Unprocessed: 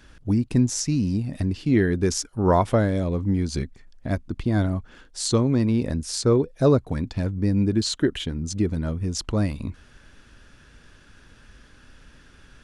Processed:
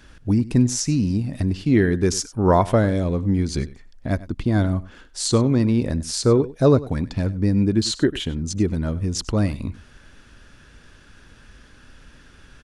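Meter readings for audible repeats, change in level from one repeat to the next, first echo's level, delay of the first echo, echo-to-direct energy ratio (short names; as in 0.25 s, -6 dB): 1, no steady repeat, -18.0 dB, 97 ms, -18.0 dB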